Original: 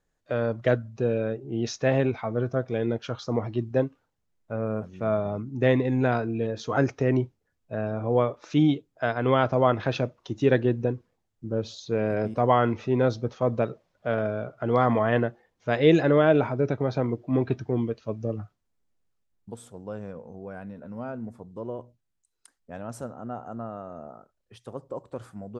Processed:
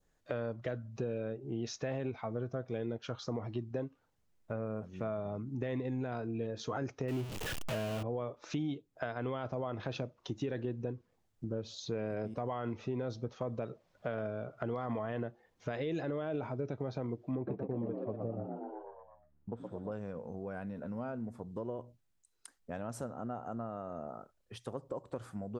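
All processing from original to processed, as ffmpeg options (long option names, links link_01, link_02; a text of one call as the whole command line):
ffmpeg -i in.wav -filter_complex "[0:a]asettb=1/sr,asplit=3[link_01][link_02][link_03];[link_01]atrim=end=7.084[link_04];[link_02]atrim=start=7.08:end=8.03,asetpts=PTS-STARTPTS,afade=type=in:duration=0.004:curve=qsin,afade=type=out:start_time=0.946:duration=0.004:curve=qsin,aeval=exprs='val(0)+0.5*0.0422*sgn(val(0))':channel_layout=same,equalizer=frequency=2800:width_type=o:width=0.51:gain=8[link_05];[link_03]atrim=start=8.026[link_06];[link_04][link_05]acrossfade=duration=0.004:curve1=hsin:curve2=qsin[link_07];[link_07][link_06]acrossfade=duration=0.004:curve1=qsin:curve2=hsin,asettb=1/sr,asplit=3[link_08][link_09][link_10];[link_08]atrim=end=17.354[link_11];[link_09]atrim=start=17.35:end=19.92,asetpts=PTS-STARTPTS,afade=type=in:duration=0.004:curve=qsin,afade=type=out:start_time=2.566:duration=0.004:curve=qsin,lowpass=1400,asplit=8[link_12][link_13][link_14][link_15][link_16][link_17][link_18][link_19];[link_13]adelay=119,afreqshift=73,volume=-6dB[link_20];[link_14]adelay=238,afreqshift=146,volume=-11dB[link_21];[link_15]adelay=357,afreqshift=219,volume=-16.1dB[link_22];[link_16]adelay=476,afreqshift=292,volume=-21.1dB[link_23];[link_17]adelay=595,afreqshift=365,volume=-26.1dB[link_24];[link_18]adelay=714,afreqshift=438,volume=-31.2dB[link_25];[link_19]adelay=833,afreqshift=511,volume=-36.2dB[link_26];[link_12][link_20][link_21][link_22][link_23][link_24][link_25][link_26]amix=inputs=8:normalize=0,atrim=end_sample=113337[link_27];[link_10]atrim=start=19.916[link_28];[link_11][link_27]acrossfade=duration=0.004:curve1=hsin:curve2=qsin[link_29];[link_29][link_28]acrossfade=duration=0.004:curve1=qsin:curve2=hsin,adynamicequalizer=threshold=0.00794:dfrequency=1800:dqfactor=1.3:tfrequency=1800:tqfactor=1.3:attack=5:release=100:ratio=0.375:range=2.5:mode=cutabove:tftype=bell,alimiter=limit=-15.5dB:level=0:latency=1:release=32,acompressor=threshold=-40dB:ratio=3,volume=2dB" out.wav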